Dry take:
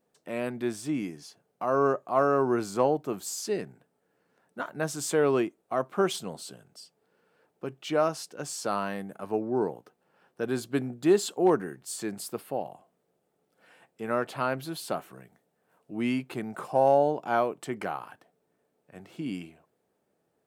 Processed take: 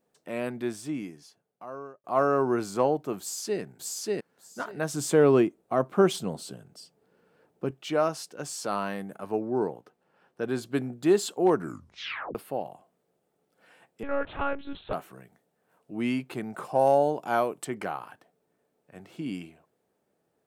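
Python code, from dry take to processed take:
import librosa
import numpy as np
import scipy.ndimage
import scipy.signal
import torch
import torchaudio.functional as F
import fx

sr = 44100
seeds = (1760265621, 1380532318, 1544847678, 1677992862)

y = fx.echo_throw(x, sr, start_s=3.2, length_s=0.41, ms=590, feedback_pct=15, wet_db=0.0)
y = fx.low_shelf(y, sr, hz=480.0, db=8.0, at=(4.94, 7.71))
y = fx.transient(y, sr, attack_db=-2, sustain_db=2, at=(8.45, 9.17))
y = fx.high_shelf(y, sr, hz=7300.0, db=-6.5, at=(9.67, 10.66))
y = fx.lpc_monotone(y, sr, seeds[0], pitch_hz=280.0, order=10, at=(14.03, 14.93))
y = fx.peak_eq(y, sr, hz=11000.0, db=9.5, octaves=1.3, at=(16.79, 17.65))
y = fx.edit(y, sr, fx.fade_out_span(start_s=0.51, length_s=1.53),
    fx.tape_stop(start_s=11.55, length_s=0.8), tone=tone)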